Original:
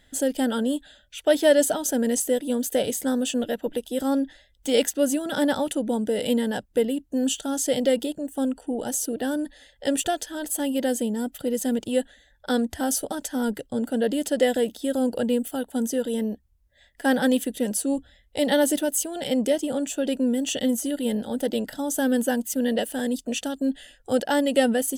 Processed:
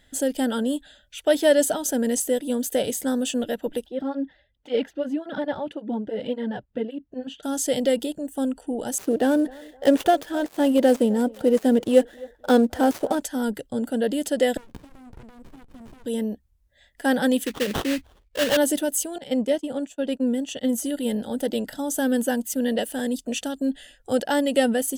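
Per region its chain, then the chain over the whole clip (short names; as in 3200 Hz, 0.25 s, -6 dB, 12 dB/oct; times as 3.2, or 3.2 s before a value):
3.86–7.43 air absorption 330 m + tape flanging out of phase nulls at 1.8 Hz, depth 4.7 ms
8.98–13.21 switching dead time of 0.075 ms + bell 520 Hz +8 dB 3 oct + narrowing echo 0.26 s, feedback 42%, band-pass 740 Hz, level -20 dB
14.57–16.06 bell 160 Hz -13.5 dB 0.85 oct + compressor 4:1, threshold -39 dBFS + running maximum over 65 samples
17.46–18.57 formant sharpening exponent 2 + sample-rate reducer 2300 Hz, jitter 20% + bell 3200 Hz +7 dB 0.42 oct
19.18–20.73 expander -24 dBFS + high shelf 6900 Hz -8.5 dB
whole clip: dry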